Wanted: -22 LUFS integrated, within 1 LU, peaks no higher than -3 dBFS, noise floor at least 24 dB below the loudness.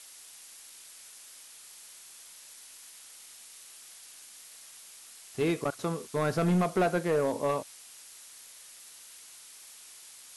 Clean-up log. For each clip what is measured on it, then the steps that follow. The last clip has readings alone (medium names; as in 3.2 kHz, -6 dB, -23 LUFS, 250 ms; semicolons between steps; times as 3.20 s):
clipped samples 0.6%; clipping level -21.0 dBFS; noise floor -51 dBFS; noise floor target -54 dBFS; loudness -29.5 LUFS; peak level -21.0 dBFS; loudness target -22.0 LUFS
-> clip repair -21 dBFS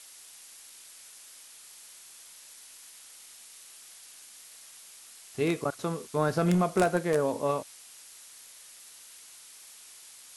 clipped samples 0.0%; noise floor -51 dBFS; noise floor target -53 dBFS
-> noise reduction 6 dB, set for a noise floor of -51 dBFS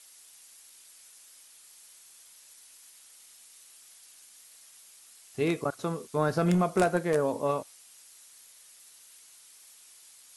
noise floor -55 dBFS; loudness -28.5 LUFS; peak level -12.0 dBFS; loudness target -22.0 LUFS
-> trim +6.5 dB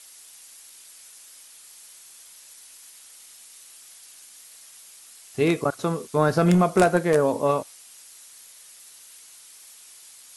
loudness -22.0 LUFS; peak level -5.5 dBFS; noise floor -49 dBFS